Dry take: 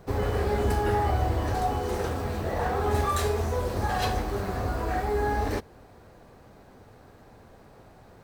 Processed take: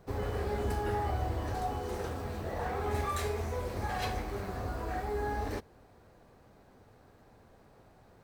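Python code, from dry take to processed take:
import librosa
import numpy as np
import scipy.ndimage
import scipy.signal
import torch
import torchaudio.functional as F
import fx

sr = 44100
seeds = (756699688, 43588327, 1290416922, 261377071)

y = fx.peak_eq(x, sr, hz=2200.0, db=6.5, octaves=0.32, at=(2.67, 4.46))
y = F.gain(torch.from_numpy(y), -7.5).numpy()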